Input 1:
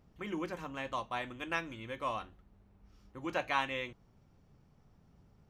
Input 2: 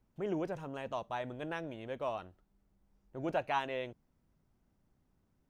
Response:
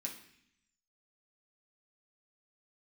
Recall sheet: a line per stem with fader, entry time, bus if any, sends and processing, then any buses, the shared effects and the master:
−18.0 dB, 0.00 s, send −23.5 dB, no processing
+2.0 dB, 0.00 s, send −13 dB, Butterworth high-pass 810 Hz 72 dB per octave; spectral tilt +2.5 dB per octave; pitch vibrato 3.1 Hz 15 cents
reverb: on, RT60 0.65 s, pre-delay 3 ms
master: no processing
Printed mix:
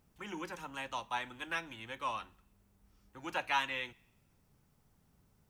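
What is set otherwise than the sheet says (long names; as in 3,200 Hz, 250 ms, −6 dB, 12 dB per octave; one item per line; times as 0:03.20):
stem 1 −18.0 dB → −6.0 dB
stem 2: polarity flipped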